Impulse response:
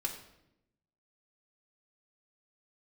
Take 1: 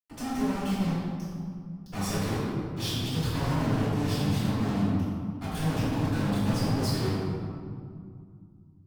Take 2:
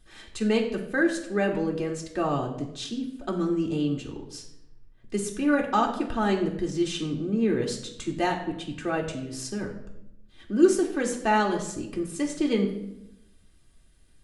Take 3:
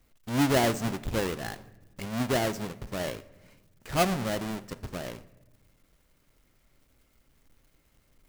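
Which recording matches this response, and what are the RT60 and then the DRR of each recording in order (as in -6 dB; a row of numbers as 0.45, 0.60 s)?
2; 2.2 s, 0.85 s, not exponential; -13.0, -2.0, 14.0 dB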